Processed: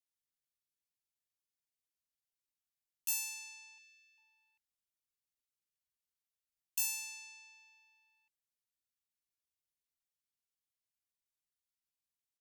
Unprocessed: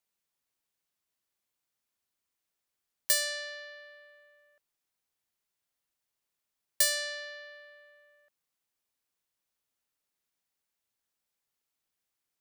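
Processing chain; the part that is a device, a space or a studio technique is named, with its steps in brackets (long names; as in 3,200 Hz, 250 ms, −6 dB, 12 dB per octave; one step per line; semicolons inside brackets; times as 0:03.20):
chipmunk voice (pitch shifter +7 semitones)
0:03.78–0:04.18: elliptic high-pass filter 1,800 Hz
guitar amp tone stack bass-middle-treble 6-0-2
level +7.5 dB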